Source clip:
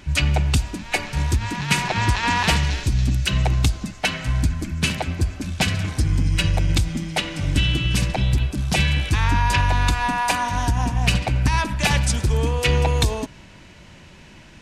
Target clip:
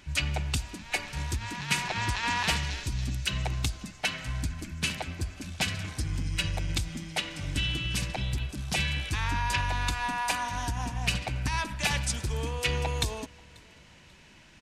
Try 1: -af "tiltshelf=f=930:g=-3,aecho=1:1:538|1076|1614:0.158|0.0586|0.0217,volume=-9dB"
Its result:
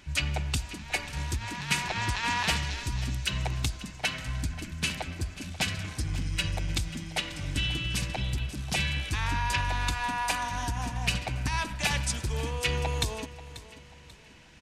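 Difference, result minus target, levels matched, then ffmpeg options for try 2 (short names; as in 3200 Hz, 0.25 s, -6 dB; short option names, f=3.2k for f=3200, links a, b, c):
echo-to-direct +11 dB
-af "tiltshelf=f=930:g=-3,aecho=1:1:538|1076:0.0447|0.0165,volume=-9dB"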